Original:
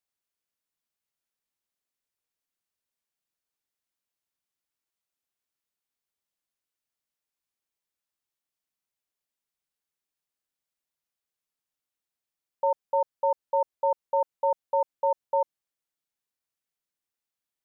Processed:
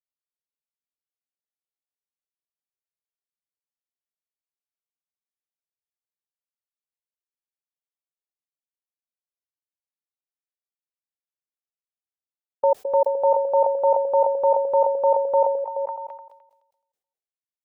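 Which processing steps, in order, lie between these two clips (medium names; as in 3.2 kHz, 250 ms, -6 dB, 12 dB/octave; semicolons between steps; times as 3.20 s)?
gate with hold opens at -20 dBFS; high-order bell 570 Hz +10 dB 1.3 oct; repeats whose band climbs or falls 213 ms, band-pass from 380 Hz, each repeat 0.7 oct, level -4.5 dB; decay stretcher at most 61 dB/s; trim -2 dB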